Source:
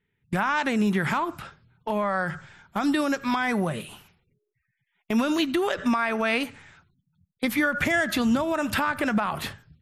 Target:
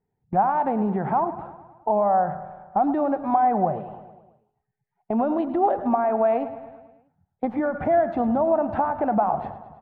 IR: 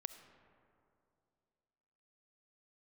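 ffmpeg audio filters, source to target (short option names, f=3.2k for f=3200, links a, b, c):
-af "lowpass=f=760:t=q:w=6.7,aecho=1:1:107|214|321|428|535|642:0.2|0.12|0.0718|0.0431|0.0259|0.0155,volume=-2dB"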